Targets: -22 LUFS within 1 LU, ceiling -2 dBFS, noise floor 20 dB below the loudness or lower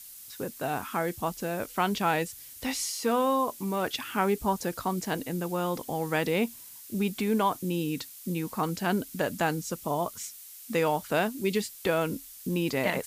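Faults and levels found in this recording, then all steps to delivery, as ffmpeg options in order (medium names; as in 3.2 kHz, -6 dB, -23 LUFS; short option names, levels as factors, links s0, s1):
noise floor -47 dBFS; noise floor target -50 dBFS; loudness -30.0 LUFS; peak level -13.0 dBFS; loudness target -22.0 LUFS
-> -af "afftdn=nr=6:nf=-47"
-af "volume=2.51"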